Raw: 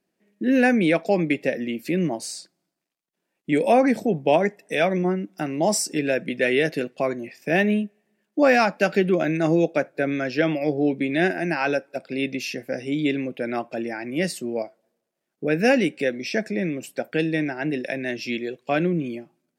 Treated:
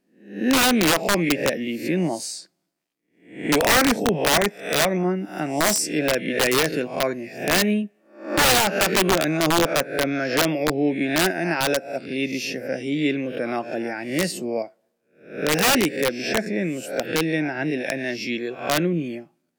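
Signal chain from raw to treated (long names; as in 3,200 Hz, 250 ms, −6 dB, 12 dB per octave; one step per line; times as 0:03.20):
peak hold with a rise ahead of every peak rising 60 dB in 0.48 s
wrap-around overflow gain 11.5 dB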